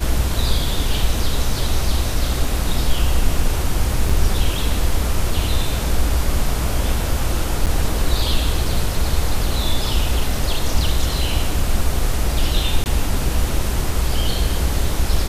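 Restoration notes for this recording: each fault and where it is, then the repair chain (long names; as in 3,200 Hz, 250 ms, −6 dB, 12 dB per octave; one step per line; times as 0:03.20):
0:04.09: drop-out 4.5 ms
0:07.66–0:07.67: drop-out 8.2 ms
0:12.84–0:12.86: drop-out 19 ms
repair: repair the gap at 0:04.09, 4.5 ms
repair the gap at 0:07.66, 8.2 ms
repair the gap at 0:12.84, 19 ms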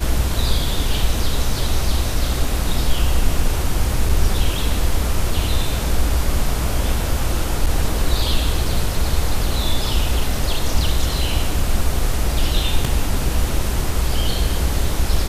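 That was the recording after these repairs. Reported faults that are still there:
none of them is left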